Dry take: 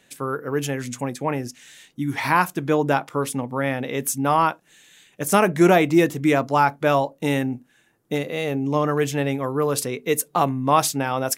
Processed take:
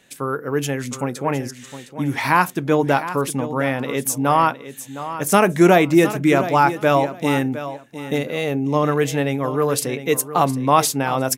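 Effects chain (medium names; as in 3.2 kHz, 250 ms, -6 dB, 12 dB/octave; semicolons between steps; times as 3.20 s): feedback delay 711 ms, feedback 19%, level -12.5 dB; trim +2.5 dB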